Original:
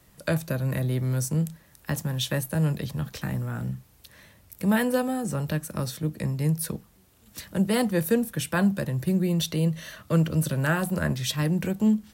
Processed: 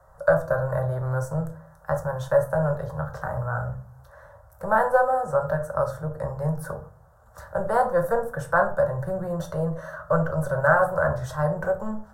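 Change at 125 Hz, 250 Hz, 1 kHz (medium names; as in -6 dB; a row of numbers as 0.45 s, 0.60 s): -2.5 dB, -8.5 dB, +11.0 dB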